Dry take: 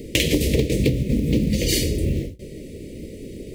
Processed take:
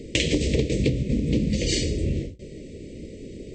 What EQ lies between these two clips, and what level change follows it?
linear-phase brick-wall low-pass 8,400 Hz
−3.0 dB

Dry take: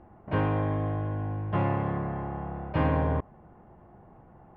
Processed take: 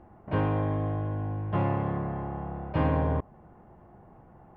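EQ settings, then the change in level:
dynamic equaliser 1,900 Hz, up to −3 dB, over −48 dBFS, Q 1
0.0 dB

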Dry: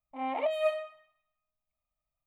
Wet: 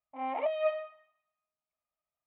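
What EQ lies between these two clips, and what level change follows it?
high-pass filter 450 Hz 6 dB per octave
high-frequency loss of the air 380 metres
+2.0 dB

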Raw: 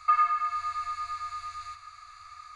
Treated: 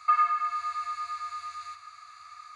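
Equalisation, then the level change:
high-pass filter 160 Hz 12 dB per octave
0.0 dB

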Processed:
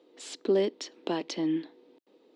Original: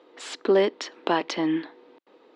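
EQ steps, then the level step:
high-pass filter 130 Hz
parametric band 1,300 Hz −15 dB 2.4 octaves
0.0 dB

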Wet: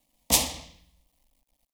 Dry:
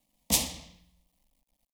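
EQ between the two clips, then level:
parametric band 190 Hz −13.5 dB 0.22 octaves
dynamic equaliser 930 Hz, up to +4 dB, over −49 dBFS, Q 0.7
+3.5 dB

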